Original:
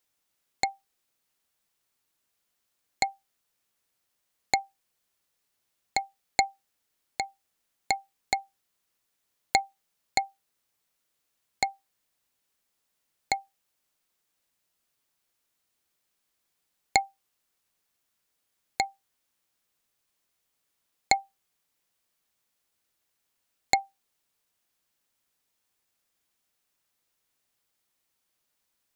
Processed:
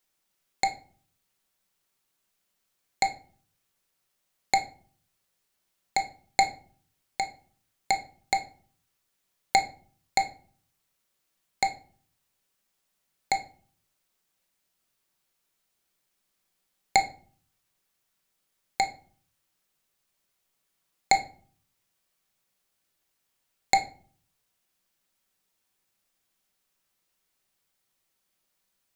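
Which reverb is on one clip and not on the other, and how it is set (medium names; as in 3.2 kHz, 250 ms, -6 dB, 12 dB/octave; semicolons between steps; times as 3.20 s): simulated room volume 390 m³, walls furnished, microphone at 1.1 m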